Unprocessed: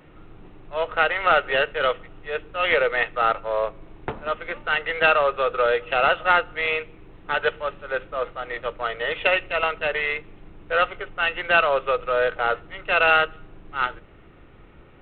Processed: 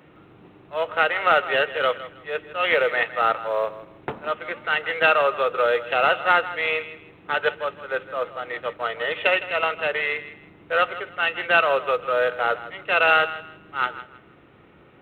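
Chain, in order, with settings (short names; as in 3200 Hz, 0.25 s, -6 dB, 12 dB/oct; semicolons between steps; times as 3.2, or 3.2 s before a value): HPF 120 Hz 12 dB/oct; short-mantissa float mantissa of 6-bit; thinning echo 0.16 s, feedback 27%, level -14 dB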